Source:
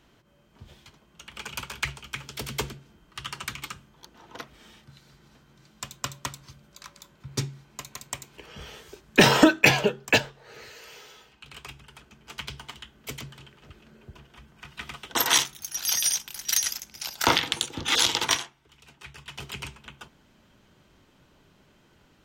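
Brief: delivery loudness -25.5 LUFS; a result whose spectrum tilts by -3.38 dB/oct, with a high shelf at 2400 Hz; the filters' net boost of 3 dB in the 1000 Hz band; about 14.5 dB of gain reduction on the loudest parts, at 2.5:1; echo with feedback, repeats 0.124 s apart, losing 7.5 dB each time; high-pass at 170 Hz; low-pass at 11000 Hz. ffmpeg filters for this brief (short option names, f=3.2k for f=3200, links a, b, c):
-af "highpass=170,lowpass=11k,equalizer=f=1k:t=o:g=4.5,highshelf=f=2.4k:g=-5,acompressor=threshold=-35dB:ratio=2.5,aecho=1:1:124|248|372|496|620:0.422|0.177|0.0744|0.0312|0.0131,volume=12dB"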